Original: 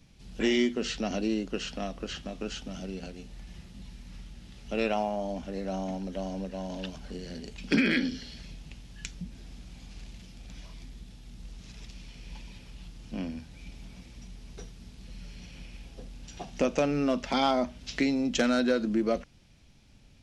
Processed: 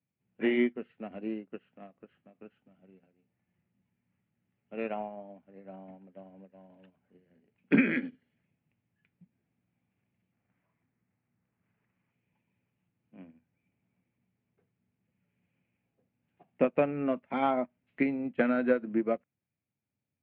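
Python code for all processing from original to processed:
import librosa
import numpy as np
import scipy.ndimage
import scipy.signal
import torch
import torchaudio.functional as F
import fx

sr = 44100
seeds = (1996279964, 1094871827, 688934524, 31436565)

y = fx.chain(x, sr, fx.sample_sort(block=8),
    fx.peak_eq(hz=1300.0, db=6.0, octaves=1.9), at=(10.32, 12.13))
y = scipy.signal.sosfilt(scipy.signal.ellip(3, 1.0, 40, [100.0, 2300.0], 'bandpass', fs=sr, output='sos'), y)
y = fx.upward_expand(y, sr, threshold_db=-42.0, expansion=2.5)
y = F.gain(torch.from_numpy(y), 3.5).numpy()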